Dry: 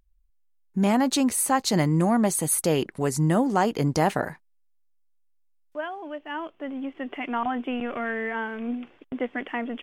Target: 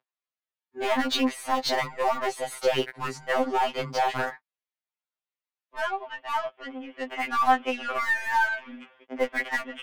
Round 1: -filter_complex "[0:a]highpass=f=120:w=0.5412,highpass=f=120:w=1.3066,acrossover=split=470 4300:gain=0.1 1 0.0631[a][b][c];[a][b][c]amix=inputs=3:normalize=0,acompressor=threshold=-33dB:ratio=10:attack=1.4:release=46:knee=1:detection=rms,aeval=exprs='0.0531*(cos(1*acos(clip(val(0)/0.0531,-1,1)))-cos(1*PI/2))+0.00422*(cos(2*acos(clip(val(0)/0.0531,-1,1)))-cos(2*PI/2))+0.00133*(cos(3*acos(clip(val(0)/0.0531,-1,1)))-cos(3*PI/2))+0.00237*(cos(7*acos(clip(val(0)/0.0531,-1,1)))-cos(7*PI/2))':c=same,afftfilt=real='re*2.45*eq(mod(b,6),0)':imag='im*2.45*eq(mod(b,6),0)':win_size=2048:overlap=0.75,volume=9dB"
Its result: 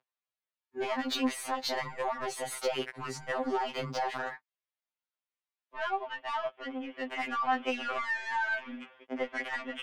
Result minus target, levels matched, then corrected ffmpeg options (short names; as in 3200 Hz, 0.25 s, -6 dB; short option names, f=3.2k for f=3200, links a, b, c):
compressor: peak gain reduction +8.5 dB
-filter_complex "[0:a]highpass=f=120:w=0.5412,highpass=f=120:w=1.3066,acrossover=split=470 4300:gain=0.1 1 0.0631[a][b][c];[a][b][c]amix=inputs=3:normalize=0,acompressor=threshold=-23.5dB:ratio=10:attack=1.4:release=46:knee=1:detection=rms,aeval=exprs='0.0531*(cos(1*acos(clip(val(0)/0.0531,-1,1)))-cos(1*PI/2))+0.00422*(cos(2*acos(clip(val(0)/0.0531,-1,1)))-cos(2*PI/2))+0.00133*(cos(3*acos(clip(val(0)/0.0531,-1,1)))-cos(3*PI/2))+0.00237*(cos(7*acos(clip(val(0)/0.0531,-1,1)))-cos(7*PI/2))':c=same,afftfilt=real='re*2.45*eq(mod(b,6),0)':imag='im*2.45*eq(mod(b,6),0)':win_size=2048:overlap=0.75,volume=9dB"